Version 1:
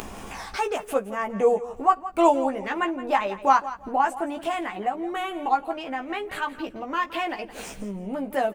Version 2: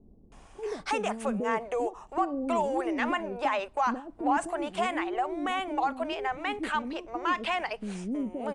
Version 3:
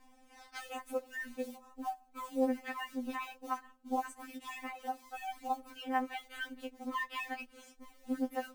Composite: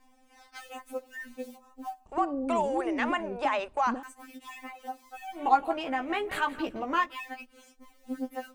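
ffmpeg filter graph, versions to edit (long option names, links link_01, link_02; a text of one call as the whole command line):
ffmpeg -i take0.wav -i take1.wav -i take2.wav -filter_complex "[2:a]asplit=3[link_01][link_02][link_03];[link_01]atrim=end=2.062[link_04];[1:a]atrim=start=2.058:end=4.032[link_05];[link_02]atrim=start=4.028:end=5.48[link_06];[0:a]atrim=start=5.32:end=7.15[link_07];[link_03]atrim=start=6.99[link_08];[link_04][link_05]acrossfade=duration=0.004:curve1=hsin:curve2=hsin[link_09];[link_09][link_06]acrossfade=duration=0.004:curve1=hsin:curve2=hsin[link_10];[link_10][link_07]acrossfade=duration=0.16:curve1=tri:curve2=tri[link_11];[link_11][link_08]acrossfade=duration=0.16:curve1=tri:curve2=tri" out.wav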